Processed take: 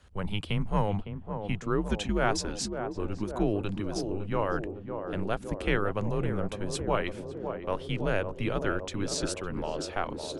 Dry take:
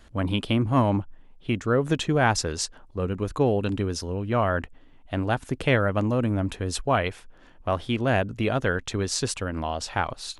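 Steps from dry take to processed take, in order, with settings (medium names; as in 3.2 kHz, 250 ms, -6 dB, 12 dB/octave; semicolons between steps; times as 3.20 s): band-passed feedback delay 558 ms, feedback 77%, band-pass 510 Hz, level -6 dB; frequency shift -100 Hz; trim -5.5 dB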